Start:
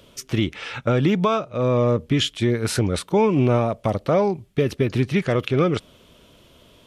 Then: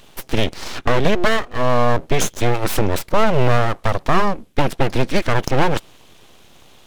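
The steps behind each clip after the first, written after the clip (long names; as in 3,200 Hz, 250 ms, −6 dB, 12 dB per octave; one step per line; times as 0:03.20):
full-wave rectification
level +6 dB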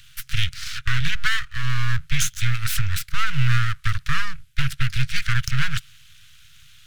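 Chebyshev band-stop filter 140–1,400 Hz, order 4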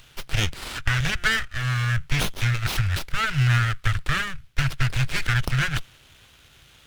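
windowed peak hold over 5 samples
level +1.5 dB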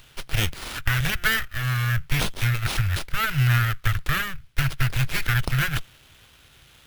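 bad sample-rate conversion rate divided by 3×, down none, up hold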